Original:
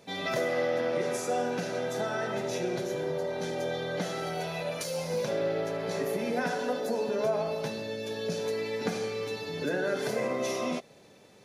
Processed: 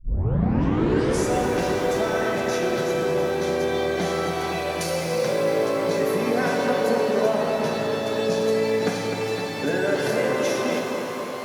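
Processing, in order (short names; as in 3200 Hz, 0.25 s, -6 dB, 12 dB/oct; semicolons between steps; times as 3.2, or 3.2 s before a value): tape start at the beginning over 1.23 s; analogue delay 0.255 s, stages 4096, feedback 68%, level -6 dB; shimmer reverb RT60 3.7 s, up +12 st, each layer -8 dB, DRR 4 dB; gain +5 dB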